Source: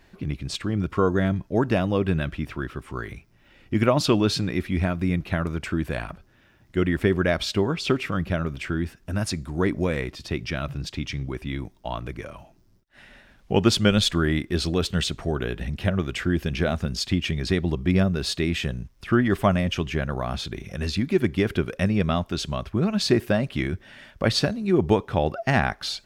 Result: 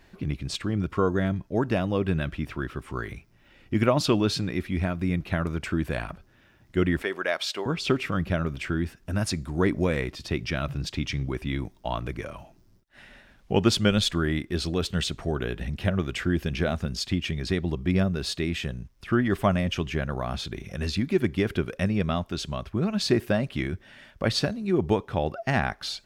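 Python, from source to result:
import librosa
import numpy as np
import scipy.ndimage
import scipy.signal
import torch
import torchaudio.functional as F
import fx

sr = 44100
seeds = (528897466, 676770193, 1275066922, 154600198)

y = fx.highpass(x, sr, hz=580.0, slope=12, at=(7.02, 7.66))
y = fx.rider(y, sr, range_db=4, speed_s=2.0)
y = y * 10.0 ** (-3.0 / 20.0)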